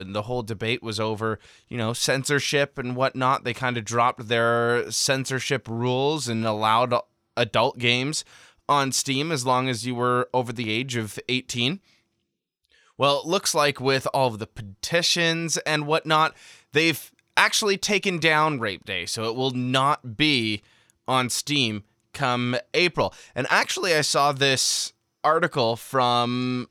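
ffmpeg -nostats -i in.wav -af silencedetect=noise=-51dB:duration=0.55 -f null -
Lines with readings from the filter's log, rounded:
silence_start: 11.93
silence_end: 12.65 | silence_duration: 0.72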